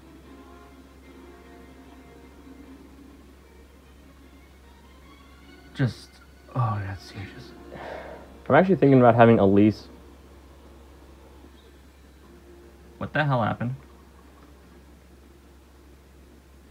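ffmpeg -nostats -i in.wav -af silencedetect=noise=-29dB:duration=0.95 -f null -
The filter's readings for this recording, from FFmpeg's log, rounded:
silence_start: 0.00
silence_end: 5.79 | silence_duration: 5.79
silence_start: 9.73
silence_end: 13.01 | silence_duration: 3.28
silence_start: 13.73
silence_end: 16.71 | silence_duration: 2.97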